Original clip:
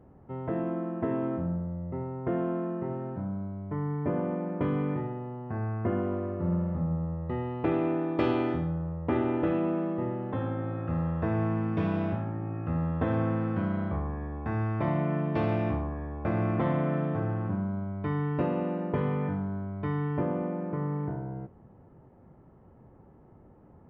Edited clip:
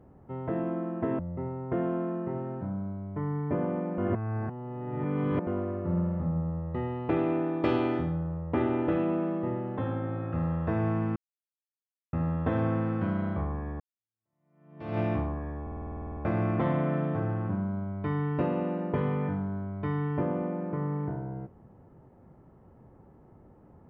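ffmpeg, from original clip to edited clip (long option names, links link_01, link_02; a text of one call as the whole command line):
ffmpeg -i in.wav -filter_complex "[0:a]asplit=18[link_01][link_02][link_03][link_04][link_05][link_06][link_07][link_08][link_09][link_10][link_11][link_12][link_13][link_14][link_15][link_16][link_17][link_18];[link_01]atrim=end=1.192[link_19];[link_02]atrim=start=1.738:end=4.532[link_20];[link_03]atrim=start=4.528:end=6.022,asetpts=PTS-STARTPTS,areverse[link_21];[link_04]atrim=start=6.018:end=11.71,asetpts=PTS-STARTPTS,afade=type=out:start_time=5.688:duration=0.004:curve=hsin[link_22];[link_05]atrim=start=11.71:end=12.68,asetpts=PTS-STARTPTS,volume=0[link_23];[link_06]atrim=start=12.68:end=14.35,asetpts=PTS-STARTPTS,afade=type=in:duration=0.004:curve=hsin,afade=type=out:start_time=1.666:duration=0.004:curve=hsin[link_24];[link_07]atrim=start=14.35:end=16.222,asetpts=PTS-STARTPTS,afade=type=in:duration=1.19:curve=exp[link_25];[link_08]atrim=start=16.168:end=16.222[link_26];[link_09]atrim=start=16.168:end=16.222[link_27];[link_10]atrim=start=16.168:end=16.222[link_28];[link_11]atrim=start=16.168:end=16.222[link_29];[link_12]atrim=start=16.168:end=16.222[link_30];[link_13]atrim=start=16.168:end=16.222[link_31];[link_14]atrim=start=16.168:end=16.222[link_32];[link_15]atrim=start=16.168:end=16.222[link_33];[link_16]atrim=start=16.168:end=16.222[link_34];[link_17]atrim=start=16.168:end=16.222[link_35];[link_18]atrim=start=16.168[link_36];[link_19][link_20]acrossfade=duration=0.004:curve1=hsin:curve2=hsin[link_37];[link_37][link_21]acrossfade=duration=0.004:curve1=hsin:curve2=hsin[link_38];[link_22][link_23][link_24][link_25]concat=n=4:v=0:a=1[link_39];[link_38][link_39]acrossfade=duration=0.004:curve1=hsin:curve2=hsin[link_40];[link_40][link_26]acrossfade=duration=0.004:curve1=hsin:curve2=hsin[link_41];[link_41][link_27]acrossfade=duration=0.004:curve1=hsin:curve2=hsin[link_42];[link_42][link_28]acrossfade=duration=0.004:curve1=hsin:curve2=hsin[link_43];[link_43][link_29]acrossfade=duration=0.004:curve1=hsin:curve2=hsin[link_44];[link_44][link_30]acrossfade=duration=0.004:curve1=hsin:curve2=hsin[link_45];[link_45][link_31]acrossfade=duration=0.004:curve1=hsin:curve2=hsin[link_46];[link_46][link_32]acrossfade=duration=0.004:curve1=hsin:curve2=hsin[link_47];[link_47][link_33]acrossfade=duration=0.004:curve1=hsin:curve2=hsin[link_48];[link_48][link_34]acrossfade=duration=0.004:curve1=hsin:curve2=hsin[link_49];[link_49][link_35]acrossfade=duration=0.004:curve1=hsin:curve2=hsin[link_50];[link_50][link_36]acrossfade=duration=0.004:curve1=hsin:curve2=hsin" out.wav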